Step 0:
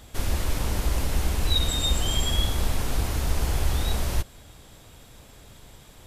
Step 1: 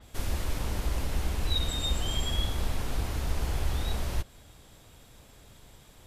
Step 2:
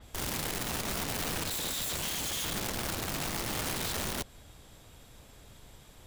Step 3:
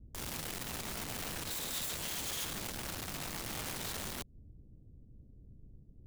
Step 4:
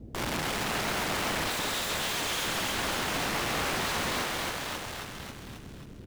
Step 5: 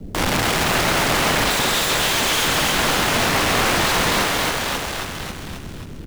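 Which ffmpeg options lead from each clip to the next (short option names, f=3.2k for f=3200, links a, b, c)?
-af "adynamicequalizer=threshold=0.00708:dfrequency=5200:dqfactor=0.7:tfrequency=5200:tqfactor=0.7:attack=5:release=100:ratio=0.375:range=2:mode=cutabove:tftype=highshelf,volume=-5dB"
-af "aeval=exprs='(mod(29.9*val(0)+1,2)-1)/29.9':c=same"
-filter_complex "[0:a]acrossover=split=340[a][b];[b]acrusher=bits=5:mix=0:aa=0.000001[c];[a][c]amix=inputs=2:normalize=0,alimiter=level_in=5dB:limit=-24dB:level=0:latency=1:release=167,volume=-5dB"
-filter_complex "[0:a]asplit=8[a][b][c][d][e][f][g][h];[b]adelay=270,afreqshift=-53,volume=-6dB[i];[c]adelay=540,afreqshift=-106,volume=-11.2dB[j];[d]adelay=810,afreqshift=-159,volume=-16.4dB[k];[e]adelay=1080,afreqshift=-212,volume=-21.6dB[l];[f]adelay=1350,afreqshift=-265,volume=-26.8dB[m];[g]adelay=1620,afreqshift=-318,volume=-32dB[n];[h]adelay=1890,afreqshift=-371,volume=-37.2dB[o];[a][i][j][k][l][m][n][o]amix=inputs=8:normalize=0,asplit=2[p][q];[q]highpass=f=720:p=1,volume=26dB,asoftclip=type=tanh:threshold=-24.5dB[r];[p][r]amix=inputs=2:normalize=0,lowpass=f=2.1k:p=1,volume=-6dB,volume=6dB"
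-filter_complex "[0:a]afreqshift=-43,asplit=2[a][b];[b]acrusher=bits=5:mode=log:mix=0:aa=0.000001,volume=-3.5dB[c];[a][c]amix=inputs=2:normalize=0,volume=7.5dB"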